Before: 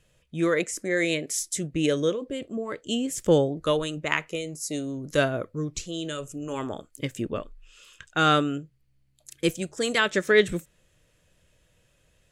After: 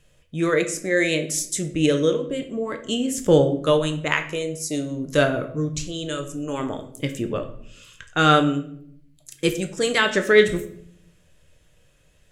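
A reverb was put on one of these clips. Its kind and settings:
rectangular room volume 110 cubic metres, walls mixed, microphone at 0.39 metres
level +3 dB

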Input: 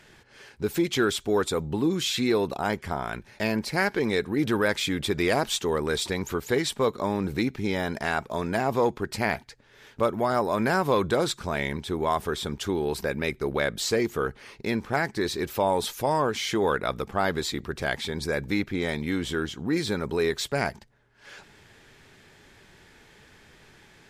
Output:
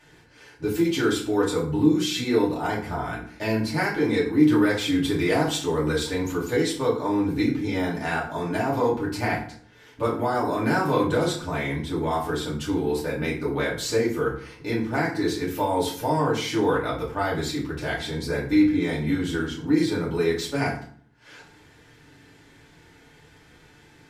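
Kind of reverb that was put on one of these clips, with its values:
feedback delay network reverb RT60 0.51 s, low-frequency decay 1.45×, high-frequency decay 0.7×, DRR −6.5 dB
level −7 dB

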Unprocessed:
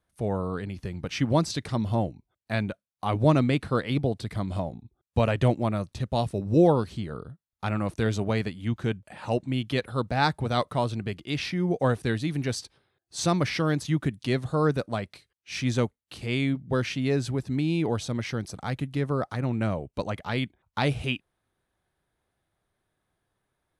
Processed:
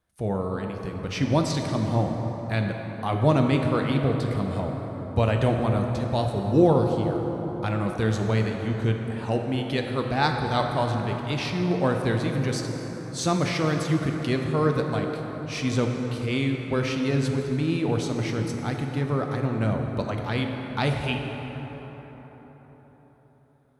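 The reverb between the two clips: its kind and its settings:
dense smooth reverb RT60 4.8 s, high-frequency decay 0.45×, DRR 2.5 dB

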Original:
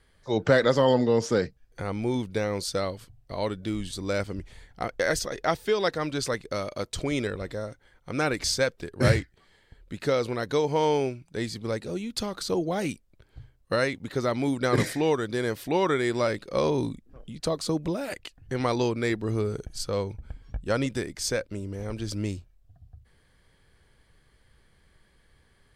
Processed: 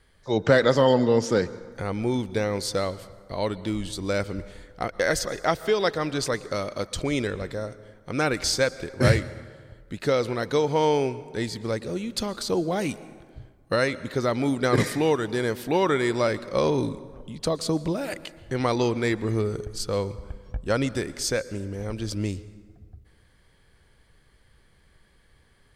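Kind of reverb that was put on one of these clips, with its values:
dense smooth reverb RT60 1.7 s, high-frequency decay 0.55×, pre-delay 105 ms, DRR 17 dB
level +2 dB

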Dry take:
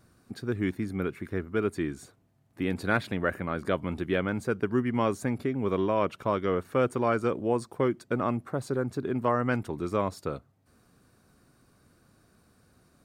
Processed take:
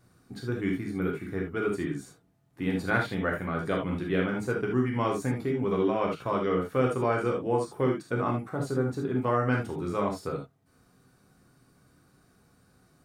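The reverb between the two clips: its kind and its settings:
reverb whose tail is shaped and stops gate 100 ms flat, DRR −1 dB
level −3.5 dB

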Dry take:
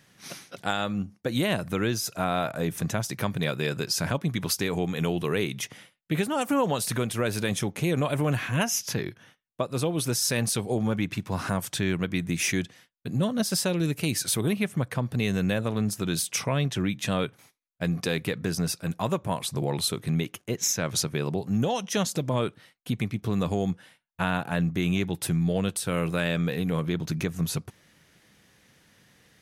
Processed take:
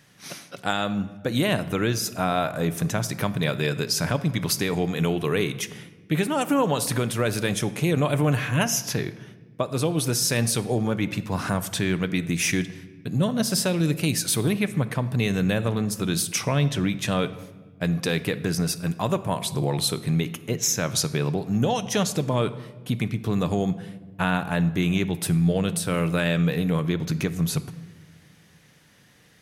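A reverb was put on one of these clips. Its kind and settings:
rectangular room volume 1,200 cubic metres, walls mixed, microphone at 0.39 metres
level +2.5 dB

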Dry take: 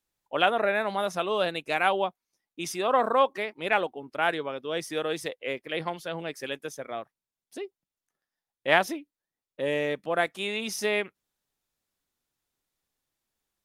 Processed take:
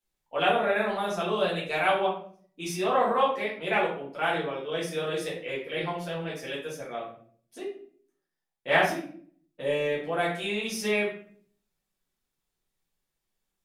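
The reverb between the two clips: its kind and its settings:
rectangular room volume 61 cubic metres, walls mixed, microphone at 1.6 metres
level −8 dB

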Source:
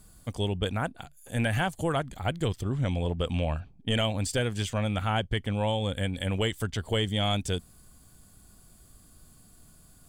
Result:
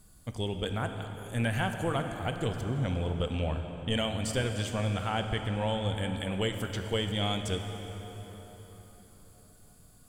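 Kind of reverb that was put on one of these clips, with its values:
dense smooth reverb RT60 4.7 s, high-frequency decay 0.65×, DRR 5 dB
level −3.5 dB

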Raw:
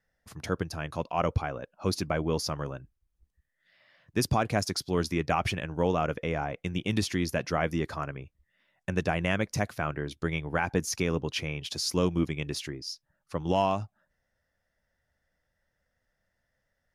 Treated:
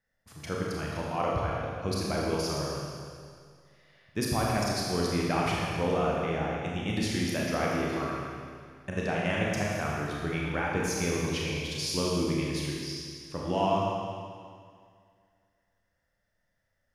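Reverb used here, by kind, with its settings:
four-comb reverb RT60 2.1 s, combs from 27 ms, DRR −4 dB
level −5 dB

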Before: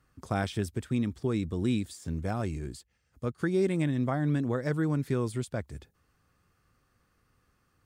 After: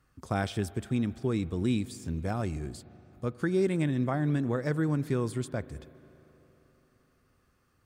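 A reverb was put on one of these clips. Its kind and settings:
spring reverb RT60 3.8 s, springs 39/43 ms, chirp 55 ms, DRR 17.5 dB

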